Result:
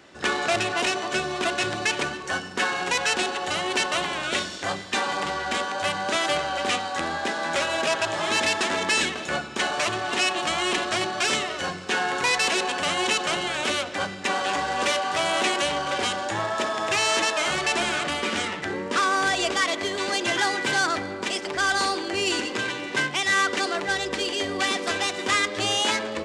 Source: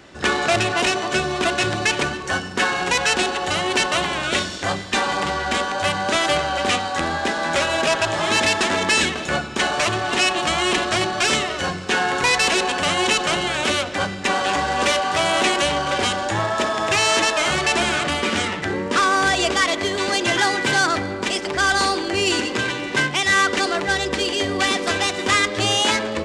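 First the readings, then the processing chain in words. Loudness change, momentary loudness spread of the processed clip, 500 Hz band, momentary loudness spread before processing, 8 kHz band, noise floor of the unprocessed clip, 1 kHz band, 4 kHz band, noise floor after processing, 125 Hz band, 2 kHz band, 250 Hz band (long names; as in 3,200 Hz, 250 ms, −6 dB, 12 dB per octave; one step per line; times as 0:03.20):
−4.5 dB, 5 LU, −5.0 dB, 5 LU, −4.5 dB, −29 dBFS, −4.5 dB, −4.5 dB, −35 dBFS, −9.5 dB, −4.5 dB, −6.0 dB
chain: low-shelf EQ 120 Hz −10.5 dB
level −4.5 dB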